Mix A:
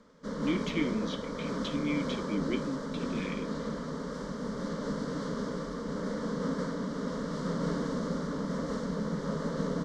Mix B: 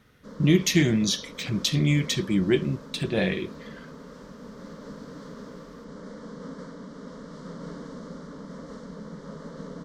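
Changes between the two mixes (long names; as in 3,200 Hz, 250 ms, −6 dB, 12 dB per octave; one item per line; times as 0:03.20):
speech: remove formant filter i
background −7.0 dB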